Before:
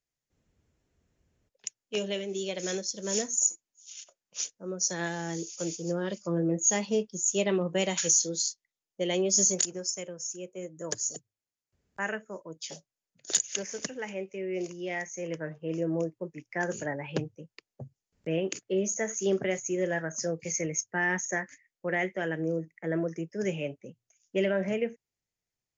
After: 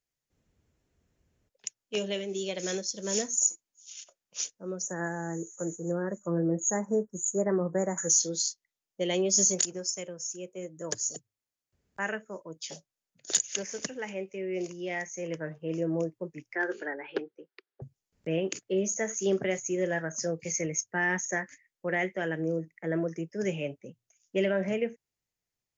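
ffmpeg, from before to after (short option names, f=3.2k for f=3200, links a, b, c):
-filter_complex "[0:a]asplit=3[a][b][c];[a]afade=t=out:st=4.81:d=0.02[d];[b]asuperstop=centerf=3600:order=12:qfactor=0.72,afade=t=in:st=4.81:d=0.02,afade=t=out:st=8.09:d=0.02[e];[c]afade=t=in:st=8.09:d=0.02[f];[d][e][f]amix=inputs=3:normalize=0,asettb=1/sr,asplit=3[g][h][i];[g]atrim=end=16.554[j];[h]atrim=start=16.55:end=17.82,asetpts=PTS-STARTPTS,afade=t=in:d=0.004:c=qsin,afade=t=out:st=1.266:d=0.004:c=qsin,highpass=f=320:w=0.5412,highpass=f=320:w=1.3066,equalizer=f=380:t=q:w=4:g=6,equalizer=f=610:t=q:w=4:g=-8,equalizer=f=970:t=q:w=4:g=-4,equalizer=f=1.5k:t=q:w=4:g=6,equalizer=f=2.7k:t=q:w=4:g=-5,lowpass=f=4k:w=0.5412,lowpass=f=4k:w=1.3066[k];[i]atrim=start=17.816[l];[j][k]acrossfade=d=0.004:c1=hsin:c2=qsin[m];[m][l]acrossfade=d=0.004:c1=qsin:c2=hsin"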